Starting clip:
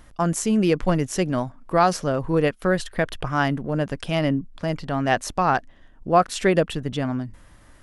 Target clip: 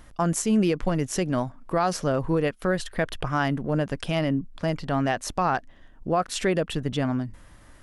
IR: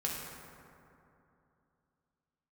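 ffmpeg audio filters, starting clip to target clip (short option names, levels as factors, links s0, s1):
-af "alimiter=limit=0.211:level=0:latency=1:release=161"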